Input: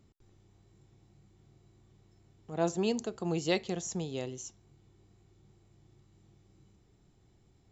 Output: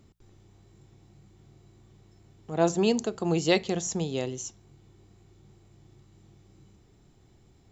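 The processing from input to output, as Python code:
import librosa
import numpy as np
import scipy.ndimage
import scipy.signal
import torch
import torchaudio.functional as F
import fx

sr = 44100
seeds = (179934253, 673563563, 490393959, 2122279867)

y = fx.hum_notches(x, sr, base_hz=60, count=3)
y = y * 10.0 ** (6.5 / 20.0)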